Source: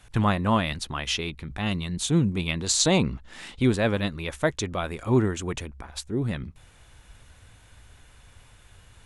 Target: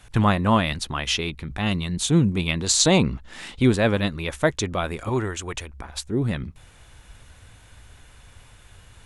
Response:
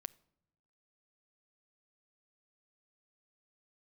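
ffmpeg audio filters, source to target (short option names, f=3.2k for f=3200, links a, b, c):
-filter_complex "[0:a]asettb=1/sr,asplit=3[a][b][c];[a]atrim=end=5.094[d];[b]atrim=start=5.09:end=5.74,asetpts=PTS-STARTPTS,afade=t=in:d=0.004:c=qsin,afade=t=out:st=0.646:d=0.004:c=qsin,equalizer=f=200:t=o:w=2.1:g=-11[e];[c]atrim=start=5.736[f];[d][e]acrossfade=d=0.004:c1=hsin:c2=qsin[g];[g][f]acrossfade=d=0.004:c1=qsin:c2=hsin,volume=3.5dB"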